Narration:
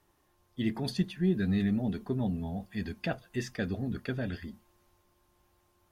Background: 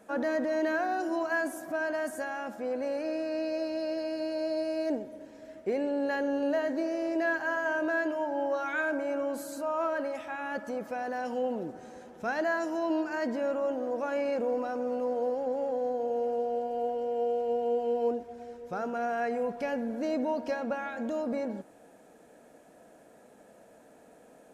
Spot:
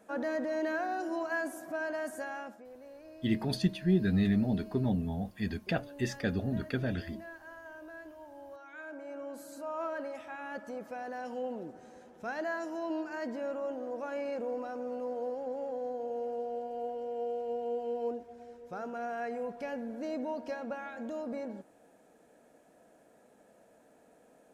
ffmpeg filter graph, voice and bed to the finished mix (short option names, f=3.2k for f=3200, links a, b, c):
-filter_complex "[0:a]adelay=2650,volume=1dB[a];[1:a]volume=8.5dB,afade=t=out:st=2.37:d=0.28:silence=0.188365,afade=t=in:st=8.67:d=1.16:silence=0.237137[b];[a][b]amix=inputs=2:normalize=0"